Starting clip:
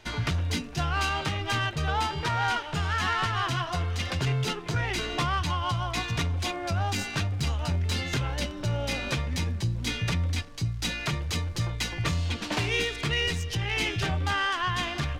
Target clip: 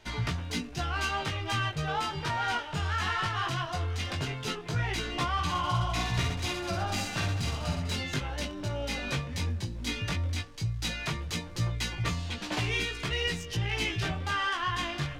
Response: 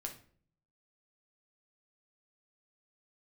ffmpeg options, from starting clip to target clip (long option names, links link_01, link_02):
-filter_complex "[0:a]flanger=delay=16:depth=5.2:speed=0.16,asettb=1/sr,asplit=3[link_01][link_02][link_03];[link_01]atrim=end=5.324[link_04];[link_02]atrim=start=5.32:end=7.96,asetpts=PTS-STARTPTS,afade=type=in:duration=0.004:curve=qsin,afade=type=out:start_time=2.636:duration=0.004:curve=qsin,aecho=1:1:50|115|199.5|309.4|452.2:0.631|0.398|0.251|0.158|0.1,atrim=end_sample=116424[link_05];[link_03]atrim=start=7.956[link_06];[link_04][link_05]acrossfade=duration=0.004:curve1=hsin:curve2=qsin[link_07];[link_07][link_06]acrossfade=duration=0.004:curve1=qsin:curve2=hsin"